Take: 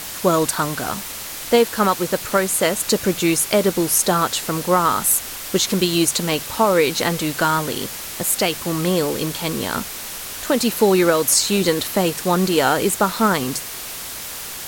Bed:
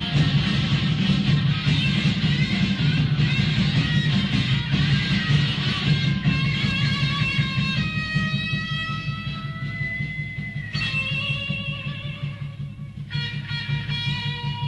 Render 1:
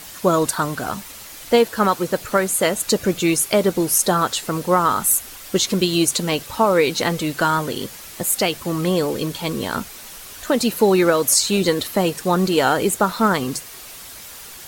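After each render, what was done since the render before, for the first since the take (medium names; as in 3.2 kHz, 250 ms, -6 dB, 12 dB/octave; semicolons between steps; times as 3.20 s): noise reduction 8 dB, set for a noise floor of -31 dBFS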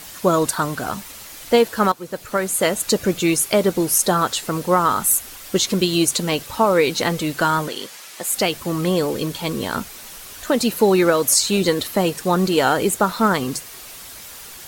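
1.92–2.64 s: fade in, from -14.5 dB; 7.68–8.34 s: frequency weighting A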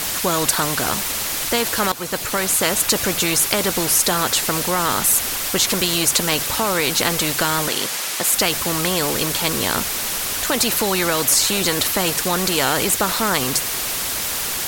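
in parallel at -1 dB: peak limiter -12.5 dBFS, peak gain reduction 8 dB; on the sum: spectrum-flattening compressor 2:1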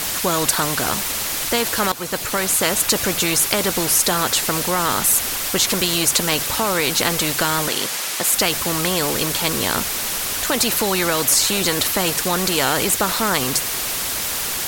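no audible change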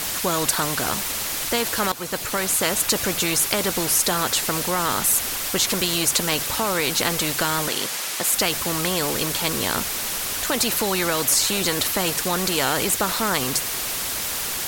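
trim -3 dB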